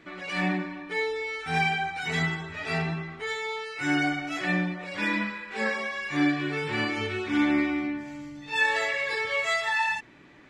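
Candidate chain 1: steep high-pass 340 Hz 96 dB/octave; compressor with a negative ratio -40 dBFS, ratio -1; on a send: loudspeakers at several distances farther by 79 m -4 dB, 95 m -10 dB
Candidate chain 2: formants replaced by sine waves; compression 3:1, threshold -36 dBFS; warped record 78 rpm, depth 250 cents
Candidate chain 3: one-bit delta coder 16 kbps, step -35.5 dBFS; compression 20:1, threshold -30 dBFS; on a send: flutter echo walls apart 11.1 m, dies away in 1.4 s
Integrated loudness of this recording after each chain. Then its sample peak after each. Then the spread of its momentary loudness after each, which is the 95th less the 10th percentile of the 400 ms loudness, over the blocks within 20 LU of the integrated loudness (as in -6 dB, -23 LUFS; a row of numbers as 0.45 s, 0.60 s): -35.5 LUFS, -36.5 LUFS, -30.5 LUFS; -21.0 dBFS, -23.5 dBFS, -17.5 dBFS; 8 LU, 8 LU, 6 LU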